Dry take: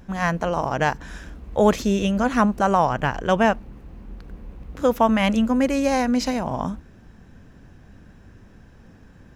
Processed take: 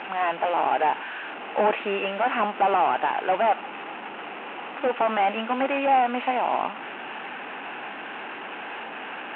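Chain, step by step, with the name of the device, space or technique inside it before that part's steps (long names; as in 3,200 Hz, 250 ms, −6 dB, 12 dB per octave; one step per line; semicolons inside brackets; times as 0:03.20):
digital answering machine (band-pass filter 350–3,200 Hz; linear delta modulator 16 kbit/s, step −33.5 dBFS; loudspeaker in its box 360–3,800 Hz, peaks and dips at 520 Hz −4 dB, 820 Hz +8 dB, 1,400 Hz +3 dB, 2,700 Hz +8 dB)
level +3 dB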